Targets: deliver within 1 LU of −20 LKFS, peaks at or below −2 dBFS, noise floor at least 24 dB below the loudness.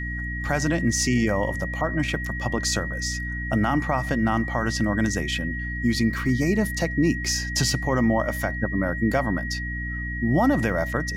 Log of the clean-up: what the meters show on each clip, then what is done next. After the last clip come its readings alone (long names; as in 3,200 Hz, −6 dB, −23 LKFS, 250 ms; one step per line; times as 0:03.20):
mains hum 60 Hz; hum harmonics up to 300 Hz; level of the hum −29 dBFS; interfering tone 1,900 Hz; level of the tone −31 dBFS; integrated loudness −24.0 LKFS; sample peak −10.5 dBFS; target loudness −20.0 LKFS
→ mains-hum notches 60/120/180/240/300 Hz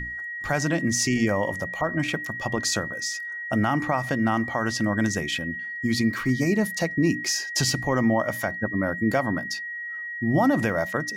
mains hum none found; interfering tone 1,900 Hz; level of the tone −31 dBFS
→ notch filter 1,900 Hz, Q 30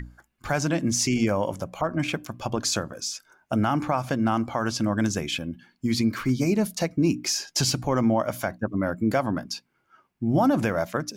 interfering tone none found; integrated loudness −25.5 LKFS; sample peak −11.5 dBFS; target loudness −20.0 LKFS
→ level +5.5 dB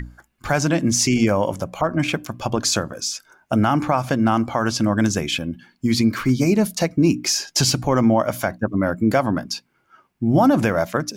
integrated loudness −20.0 LKFS; sample peak −6.0 dBFS; background noise floor −65 dBFS